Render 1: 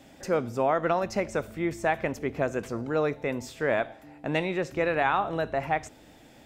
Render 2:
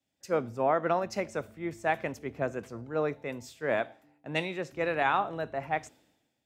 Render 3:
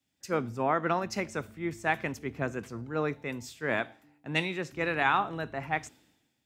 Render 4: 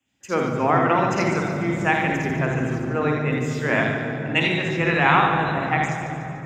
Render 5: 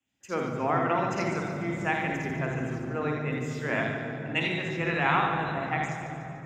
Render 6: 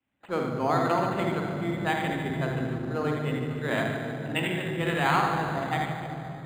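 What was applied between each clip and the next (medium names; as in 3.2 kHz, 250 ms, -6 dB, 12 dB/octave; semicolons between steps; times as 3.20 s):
high-pass 85 Hz; three bands expanded up and down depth 100%; trim -3.5 dB
peaking EQ 590 Hz -8.5 dB 0.9 oct; trim +3.5 dB
two-band feedback delay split 330 Hz, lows 215 ms, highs 146 ms, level -9.5 dB; reverberation RT60 3.6 s, pre-delay 52 ms, DRR 1 dB
feedback comb 680 Hz, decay 0.47 s, mix 60%
decimation joined by straight lines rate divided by 8×; trim +2 dB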